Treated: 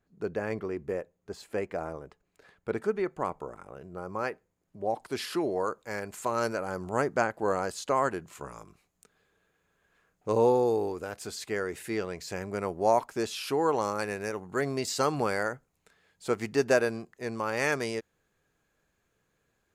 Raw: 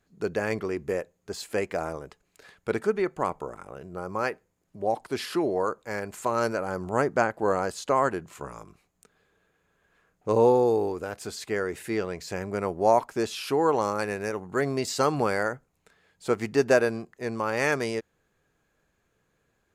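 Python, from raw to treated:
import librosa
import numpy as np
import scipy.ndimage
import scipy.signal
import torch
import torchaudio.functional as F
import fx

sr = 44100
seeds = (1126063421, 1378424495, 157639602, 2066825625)

y = fx.high_shelf(x, sr, hz=2400.0, db=fx.steps((0.0, -9.0), (2.76, -3.5), (4.98, 3.0)))
y = y * 10.0 ** (-3.5 / 20.0)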